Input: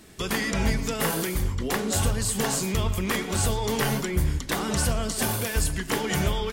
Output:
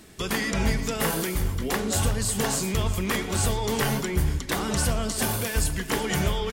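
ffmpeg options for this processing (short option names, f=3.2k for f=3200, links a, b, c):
-af "areverse,acompressor=mode=upward:threshold=-34dB:ratio=2.5,areverse,aecho=1:1:366:0.158"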